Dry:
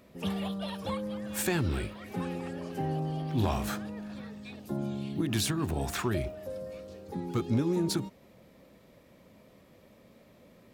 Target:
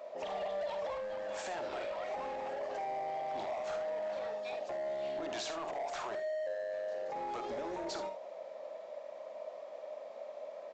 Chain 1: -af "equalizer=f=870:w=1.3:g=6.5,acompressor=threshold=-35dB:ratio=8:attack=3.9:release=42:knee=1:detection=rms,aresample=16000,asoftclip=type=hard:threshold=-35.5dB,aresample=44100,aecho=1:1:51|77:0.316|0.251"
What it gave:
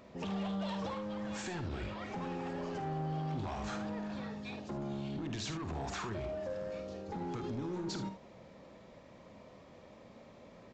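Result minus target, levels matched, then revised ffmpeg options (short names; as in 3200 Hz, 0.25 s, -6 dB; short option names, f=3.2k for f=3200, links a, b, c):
500 Hz band -6.0 dB
-af "highpass=f=610:t=q:w=7.5,equalizer=f=870:w=1.3:g=6.5,acompressor=threshold=-35dB:ratio=8:attack=3.9:release=42:knee=1:detection=rms,aresample=16000,asoftclip=type=hard:threshold=-35.5dB,aresample=44100,aecho=1:1:51|77:0.316|0.251"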